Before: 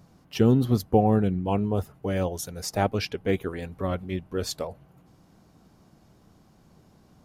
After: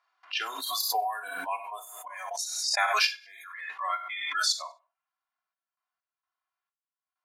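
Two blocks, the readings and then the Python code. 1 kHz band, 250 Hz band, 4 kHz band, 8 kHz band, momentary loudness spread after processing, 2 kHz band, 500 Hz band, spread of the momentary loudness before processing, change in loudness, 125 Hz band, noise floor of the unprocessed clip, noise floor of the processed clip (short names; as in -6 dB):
+1.0 dB, under -30 dB, +8.5 dB, +6.0 dB, 16 LU, +8.0 dB, -15.0 dB, 11 LU, -3.0 dB, under -40 dB, -59 dBFS, under -85 dBFS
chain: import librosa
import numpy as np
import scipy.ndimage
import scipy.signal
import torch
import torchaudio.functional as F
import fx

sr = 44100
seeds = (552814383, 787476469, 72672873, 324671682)

y = fx.env_lowpass(x, sr, base_hz=2300.0, full_db=-21.0)
y = scipy.signal.sosfilt(scipy.signal.butter(4, 1100.0, 'highpass', fs=sr, output='sos'), y)
y = fx.noise_reduce_blind(y, sr, reduce_db=26)
y = y + 0.68 * np.pad(y, (int(2.9 * sr / 1000.0), 0))[:len(y)]
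y = fx.step_gate(y, sr, bpm=65, pattern='.xxxxxxxx.x.xx.', floor_db=-24.0, edge_ms=4.5)
y = fx.echo_feedback(y, sr, ms=98, feedback_pct=20, wet_db=-23.0)
y = fx.rev_gated(y, sr, seeds[0], gate_ms=80, shape='flat', drr_db=7.0)
y = fx.pre_swell(y, sr, db_per_s=37.0)
y = y * librosa.db_to_amplitude(5.5)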